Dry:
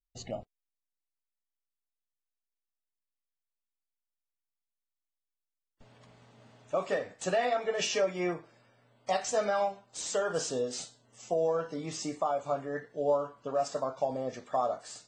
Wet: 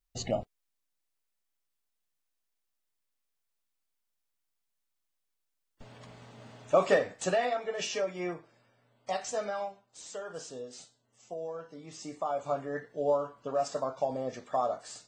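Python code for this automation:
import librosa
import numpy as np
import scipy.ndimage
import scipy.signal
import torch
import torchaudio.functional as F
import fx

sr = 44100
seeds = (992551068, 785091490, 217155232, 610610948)

y = fx.gain(x, sr, db=fx.line((6.92, 7.0), (7.63, -3.5), (9.29, -3.5), (9.98, -10.0), (11.86, -10.0), (12.42, 0.0)))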